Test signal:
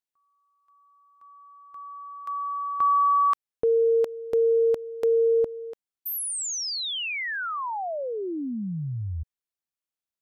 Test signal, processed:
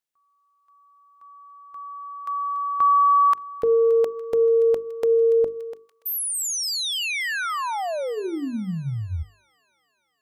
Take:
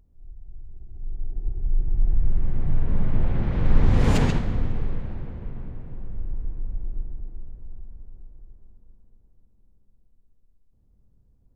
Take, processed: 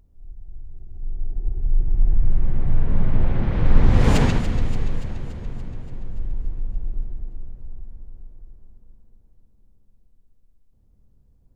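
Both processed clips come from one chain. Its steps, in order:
mains-hum notches 50/100/150/200/250/300/350/400/450 Hz
delay with a high-pass on its return 287 ms, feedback 62%, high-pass 1,900 Hz, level −12 dB
level +3.5 dB

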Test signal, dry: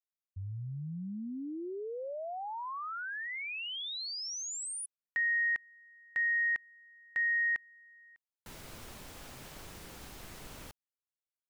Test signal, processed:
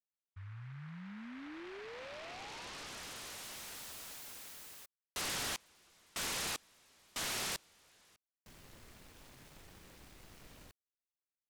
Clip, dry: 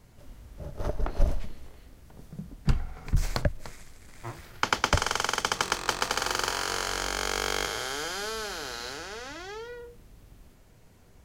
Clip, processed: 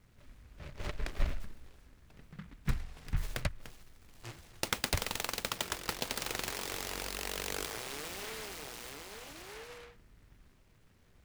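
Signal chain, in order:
high-shelf EQ 9,600 Hz −10 dB
short delay modulated by noise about 1,500 Hz, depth 0.25 ms
level −8 dB

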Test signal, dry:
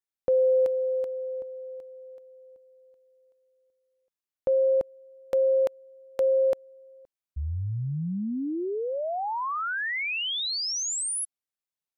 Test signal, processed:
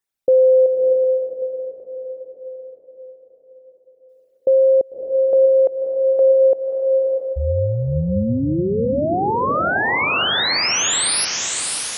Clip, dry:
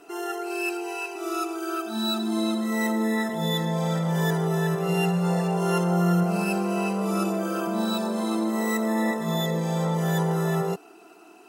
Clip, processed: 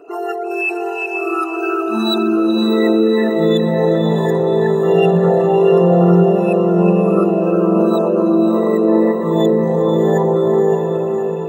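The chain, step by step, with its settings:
spectral envelope exaggerated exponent 2
feedback delay with all-pass diffusion 605 ms, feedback 52%, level −4 dB
level +9 dB

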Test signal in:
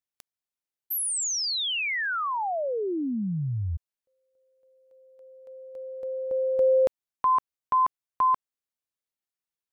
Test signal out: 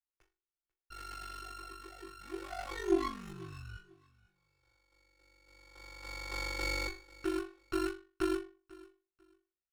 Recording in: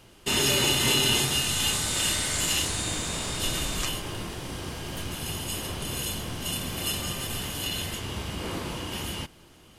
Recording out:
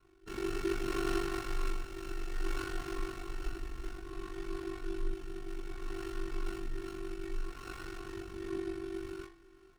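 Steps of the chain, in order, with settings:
samples sorted by size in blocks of 32 samples
low-pass filter 5,100 Hz 12 dB per octave
parametric band 700 Hz −9.5 dB 0.6 octaves
stiff-string resonator 360 Hz, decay 0.35 s, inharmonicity 0.002
rotating-speaker cabinet horn 0.6 Hz
ring modulation 24 Hz
repeating echo 493 ms, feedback 24%, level −21.5 dB
windowed peak hold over 9 samples
level +16 dB

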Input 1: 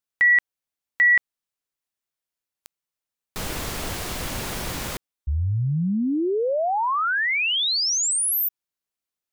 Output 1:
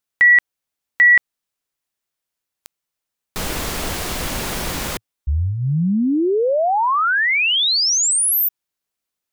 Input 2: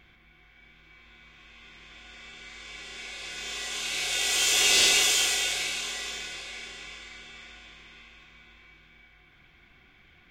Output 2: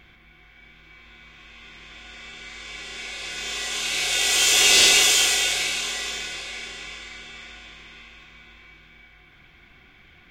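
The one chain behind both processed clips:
dynamic equaliser 110 Hz, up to −7 dB, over −51 dBFS, Q 4.5
level +5.5 dB

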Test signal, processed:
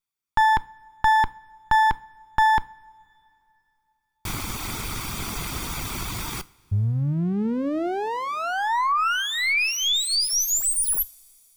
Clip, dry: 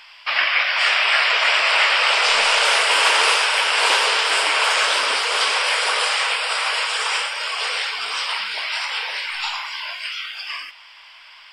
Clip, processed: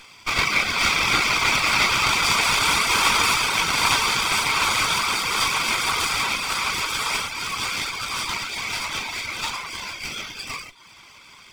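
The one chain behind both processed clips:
lower of the sound and its delayed copy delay 0.86 ms
reverb reduction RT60 0.52 s
coupled-rooms reverb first 0.37 s, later 3.1 s, from −18 dB, DRR 17 dB

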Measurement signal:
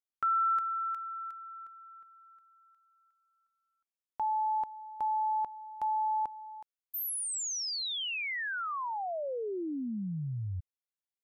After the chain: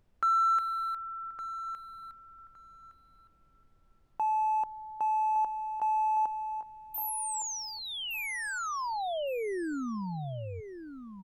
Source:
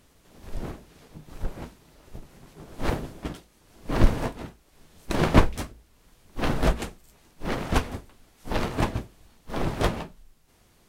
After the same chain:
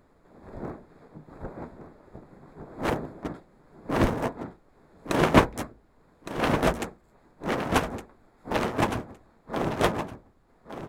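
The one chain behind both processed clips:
adaptive Wiener filter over 15 samples
high-pass filter 230 Hz 6 dB per octave
parametric band 4,600 Hz −4 dB 0.57 octaves
background noise brown −68 dBFS
on a send: repeating echo 1,163 ms, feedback 18%, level −10.5 dB
on the sum: level +3.5 dB

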